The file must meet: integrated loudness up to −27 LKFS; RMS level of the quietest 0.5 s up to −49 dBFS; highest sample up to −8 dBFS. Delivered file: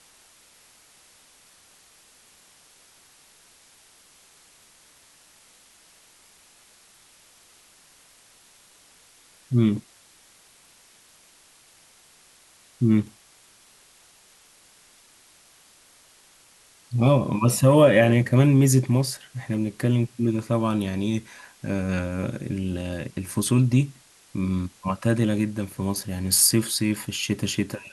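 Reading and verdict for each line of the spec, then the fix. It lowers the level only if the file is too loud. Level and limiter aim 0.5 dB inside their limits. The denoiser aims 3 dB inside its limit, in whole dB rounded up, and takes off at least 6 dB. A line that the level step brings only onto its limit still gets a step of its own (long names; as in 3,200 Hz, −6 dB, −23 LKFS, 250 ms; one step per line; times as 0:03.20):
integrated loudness −23.0 LKFS: out of spec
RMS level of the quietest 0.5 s −55 dBFS: in spec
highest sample −3.5 dBFS: out of spec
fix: level −4.5 dB
brickwall limiter −8.5 dBFS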